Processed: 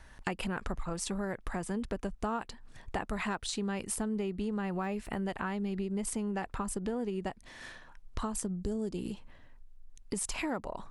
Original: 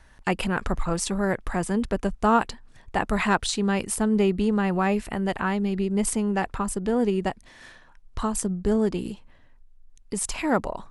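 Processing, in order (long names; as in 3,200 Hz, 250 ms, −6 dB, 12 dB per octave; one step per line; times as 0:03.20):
0:04.51–0:05.26: de-essing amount 90%
0:08.56–0:08.98: graphic EQ with 10 bands 1,000 Hz −7 dB, 2,000 Hz −8 dB, 8,000 Hz +6 dB
downward compressor 6 to 1, threshold −32 dBFS, peak gain reduction 16 dB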